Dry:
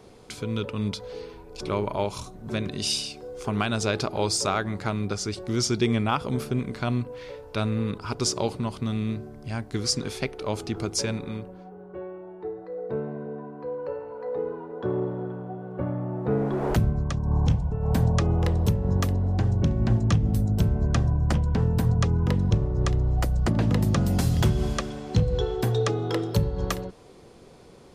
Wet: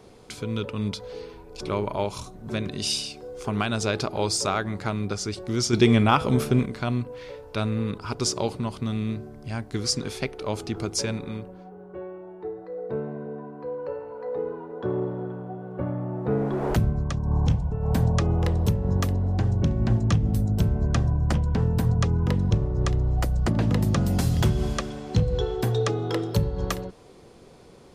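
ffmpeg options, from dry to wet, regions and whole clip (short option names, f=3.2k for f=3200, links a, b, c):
-filter_complex "[0:a]asettb=1/sr,asplit=3[a][b][c];[a]atrim=end=5.734[d];[b]atrim=start=5.73:end=6.66,asetpts=PTS-STARTPTS,afade=t=in:d=0.004:c=qsin,afade=t=out:st=0.926:d=0.004:c=qsin,bandreject=f=4.6k:w=14,bandreject=f=161.7:t=h:w=4,bandreject=f=323.4:t=h:w=4,bandreject=f=485.1:t=h:w=4,bandreject=f=646.8:t=h:w=4,bandreject=f=808.5:t=h:w=4,bandreject=f=970.2:t=h:w=4,bandreject=f=1.1319k:t=h:w=4,bandreject=f=1.2936k:t=h:w=4,bandreject=f=1.4553k:t=h:w=4,bandreject=f=1.617k:t=h:w=4,bandreject=f=1.7787k:t=h:w=4,bandreject=f=1.9404k:t=h:w=4,bandreject=f=2.1021k:t=h:w=4,bandreject=f=2.2638k:t=h:w=4,bandreject=f=2.4255k:t=h:w=4,bandreject=f=2.5872k:t=h:w=4,bandreject=f=2.7489k:t=h:w=4,bandreject=f=2.9106k:t=h:w=4,bandreject=f=3.0723k:t=h:w=4,bandreject=f=3.234k:t=h:w=4,bandreject=f=3.3957k:t=h:w=4,bandreject=f=3.5574k:t=h:w=4,bandreject=f=3.7191k:t=h:w=4,bandreject=f=3.8808k:t=h:w=4,bandreject=f=4.0425k:t=h:w=4,bandreject=f=4.2042k:t=h:w=4,bandreject=f=4.3659k:t=h:w=4,bandreject=f=4.5276k:t=h:w=4,bandreject=f=4.6893k:t=h:w=4,bandreject=f=4.851k:t=h:w=4,bandreject=f=5.0127k:t=h:w=4,bandreject=f=5.1744k:t=h:w=4,bandreject=f=5.3361k:t=h:w=4,bandreject=f=5.4978k:t=h:w=4,acontrast=49[e];[c]atrim=start=6.656[f];[d][e]acrossfade=d=0.004:c1=hsin:c2=qsin[g];[g][f]acrossfade=d=0.004:c1=qsin:c2=hsin"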